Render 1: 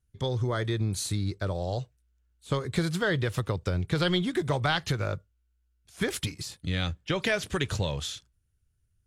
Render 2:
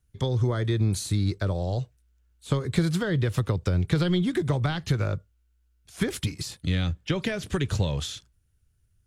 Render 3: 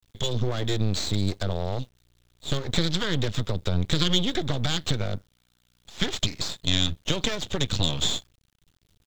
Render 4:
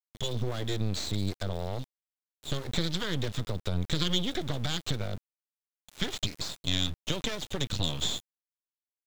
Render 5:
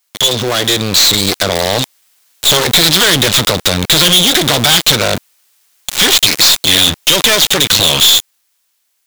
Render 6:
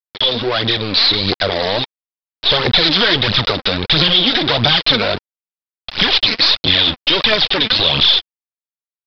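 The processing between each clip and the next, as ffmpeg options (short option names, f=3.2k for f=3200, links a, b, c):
-filter_complex "[0:a]acrossover=split=350[a][b];[b]acompressor=threshold=-37dB:ratio=4[c];[a][c]amix=inputs=2:normalize=0,volume=5dB"
-af "equalizer=f=3.6k:t=o:w=0.74:g=14.5,aresample=16000,aeval=exprs='max(val(0),0)':c=same,aresample=44100,acrusher=bits=8:dc=4:mix=0:aa=0.000001,volume=2.5dB"
-af "aeval=exprs='val(0)*gte(abs(val(0)),0.0158)':c=same,volume=-5.5dB"
-filter_complex "[0:a]dynaudnorm=f=270:g=11:m=11.5dB,asplit=2[a][b];[b]highpass=f=720:p=1,volume=37dB,asoftclip=type=tanh:threshold=-1.5dB[c];[a][c]amix=inputs=2:normalize=0,lowpass=f=2.3k:p=1,volume=-6dB,crystalizer=i=5:c=0,volume=-3dB"
-af "aphaser=in_gain=1:out_gain=1:delay=4.7:decay=0.52:speed=1.5:type=triangular,aresample=11025,acrusher=bits=6:mix=0:aa=0.000001,aresample=44100,volume=-4.5dB"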